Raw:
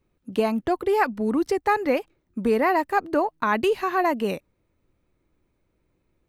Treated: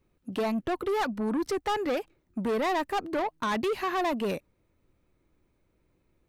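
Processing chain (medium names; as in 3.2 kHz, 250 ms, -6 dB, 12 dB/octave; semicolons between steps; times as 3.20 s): saturation -24.5 dBFS, distortion -9 dB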